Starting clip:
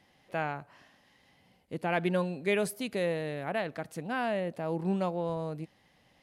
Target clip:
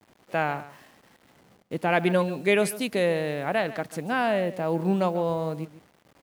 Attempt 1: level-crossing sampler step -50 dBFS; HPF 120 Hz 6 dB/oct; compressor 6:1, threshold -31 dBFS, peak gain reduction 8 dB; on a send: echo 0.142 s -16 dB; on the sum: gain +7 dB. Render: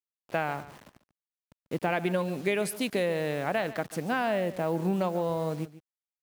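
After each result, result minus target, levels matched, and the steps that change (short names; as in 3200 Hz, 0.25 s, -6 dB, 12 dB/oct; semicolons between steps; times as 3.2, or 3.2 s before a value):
compressor: peak gain reduction +8 dB; level-crossing sampler: distortion +8 dB
remove: compressor 6:1, threshold -31 dBFS, peak gain reduction 8 dB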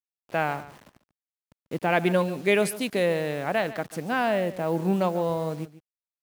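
level-crossing sampler: distortion +8 dB
change: level-crossing sampler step -57.5 dBFS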